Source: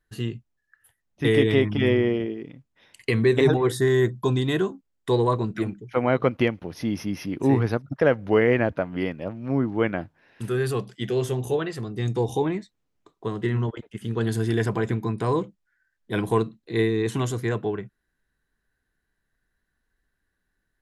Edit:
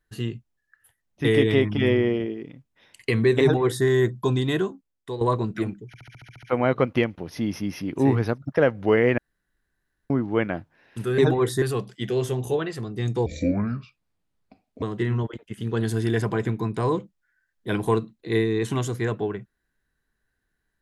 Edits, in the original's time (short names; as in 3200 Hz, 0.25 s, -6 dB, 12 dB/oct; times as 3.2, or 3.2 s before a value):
3.41–3.85 copy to 10.62
4.54–5.21 fade out, to -13 dB
5.87 stutter 0.07 s, 9 plays
8.62–9.54 room tone
12.26–13.26 speed 64%